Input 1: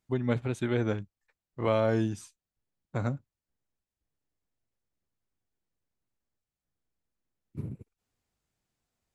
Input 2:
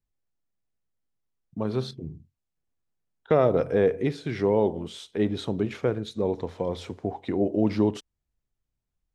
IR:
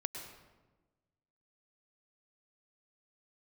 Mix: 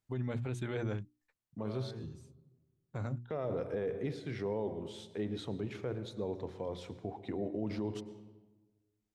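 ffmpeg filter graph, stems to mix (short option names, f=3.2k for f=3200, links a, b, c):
-filter_complex "[0:a]volume=-5dB[a];[1:a]highpass=48,volume=-12.5dB,asplit=3[b][c][d];[c]volume=-6.5dB[e];[d]apad=whole_len=403460[f];[a][f]sidechaincompress=threshold=-53dB:ratio=8:attack=9.6:release=977[g];[2:a]atrim=start_sample=2205[h];[e][h]afir=irnorm=-1:irlink=0[i];[g][b][i]amix=inputs=3:normalize=0,equalizer=f=120:w=5.8:g=7,bandreject=f=60:t=h:w=6,bandreject=f=120:t=h:w=6,bandreject=f=180:t=h:w=6,bandreject=f=240:t=h:w=6,bandreject=f=300:t=h:w=6,bandreject=f=360:t=h:w=6,alimiter=level_in=3.5dB:limit=-24dB:level=0:latency=1:release=26,volume=-3.5dB"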